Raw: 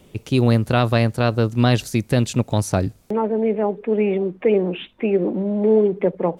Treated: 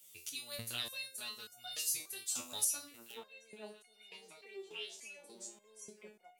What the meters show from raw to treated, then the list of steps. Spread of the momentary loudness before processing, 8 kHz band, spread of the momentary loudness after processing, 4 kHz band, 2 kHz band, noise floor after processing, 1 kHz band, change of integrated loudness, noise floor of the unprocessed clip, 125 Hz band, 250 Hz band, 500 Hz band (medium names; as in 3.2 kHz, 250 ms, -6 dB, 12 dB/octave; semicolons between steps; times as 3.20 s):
5 LU, -1.0 dB, 20 LU, -10.0 dB, -18.0 dB, -66 dBFS, -29.0 dB, -19.5 dB, -52 dBFS, under -40 dB, -38.5 dB, -34.5 dB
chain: pre-emphasis filter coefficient 0.97; flange 0.58 Hz, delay 1.3 ms, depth 2.7 ms, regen -66%; treble shelf 3.2 kHz +12 dB; repeats whose band climbs or falls 785 ms, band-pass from 350 Hz, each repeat 1.4 oct, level -5 dB; resonator arpeggio 3.4 Hz 85–720 Hz; trim +5.5 dB